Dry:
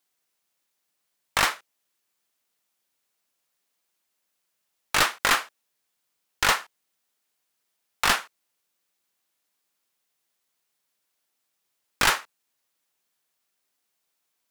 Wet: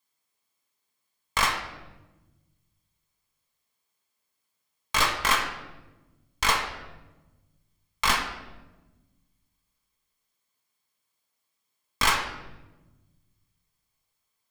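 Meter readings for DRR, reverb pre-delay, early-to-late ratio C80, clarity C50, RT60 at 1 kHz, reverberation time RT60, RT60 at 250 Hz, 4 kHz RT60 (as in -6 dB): 3.0 dB, 5 ms, 9.0 dB, 7.0 dB, 0.95 s, 1.1 s, 1.9 s, 0.75 s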